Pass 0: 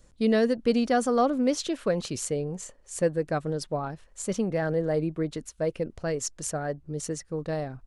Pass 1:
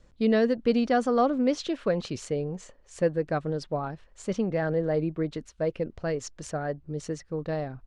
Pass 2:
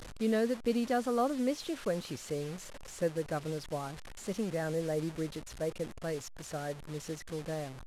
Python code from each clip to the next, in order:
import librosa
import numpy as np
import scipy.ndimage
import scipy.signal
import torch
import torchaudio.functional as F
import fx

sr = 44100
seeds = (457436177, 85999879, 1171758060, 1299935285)

y1 = scipy.signal.sosfilt(scipy.signal.butter(2, 4400.0, 'lowpass', fs=sr, output='sos'), x)
y2 = fx.delta_mod(y1, sr, bps=64000, step_db=-33.5)
y2 = y2 * librosa.db_to_amplitude(-7.0)